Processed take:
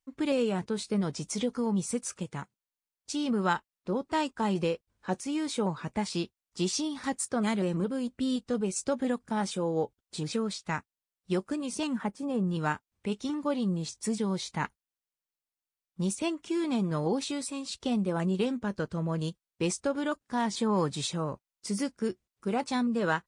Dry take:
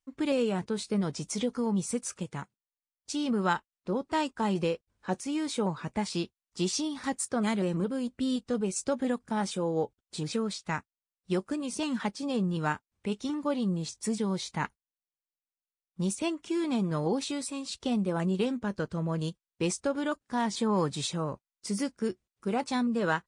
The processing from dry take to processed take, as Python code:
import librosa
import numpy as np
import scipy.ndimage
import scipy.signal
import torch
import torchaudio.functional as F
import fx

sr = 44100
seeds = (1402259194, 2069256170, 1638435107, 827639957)

y = fx.peak_eq(x, sr, hz=4300.0, db=-14.5, octaves=1.6, at=(11.87, 12.47))